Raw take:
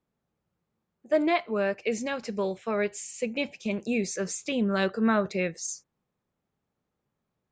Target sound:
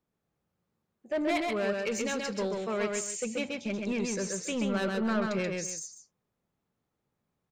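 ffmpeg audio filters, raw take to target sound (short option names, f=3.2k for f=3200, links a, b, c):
-filter_complex "[0:a]asettb=1/sr,asplit=3[a][b][c];[a]atrim=end=1.294[d];[b]atrim=start=1.29:end=3.12,asetpts=PTS-STARTPTS,afade=t=in:d=0.004:c=qsin,afade=t=out:st=1.826:d=0.004:c=qsin,highshelf=f=2.6k:g=6.5[e];[c]atrim=start=3.116[f];[d][e]acrossfade=d=0.004:c1=hsin:c2=qsin[g];[g][f]acrossfade=d=0.004:c1=qsin:c2=hsin,asoftclip=type=tanh:threshold=-23.5dB,aecho=1:1:131|280:0.708|0.188,volume=-2dB"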